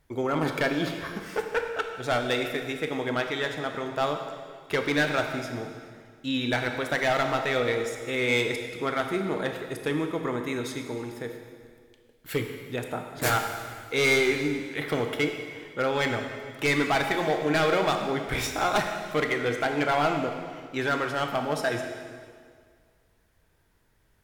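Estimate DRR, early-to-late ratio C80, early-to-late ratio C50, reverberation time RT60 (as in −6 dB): 4.0 dB, 6.5 dB, 5.5 dB, 1.9 s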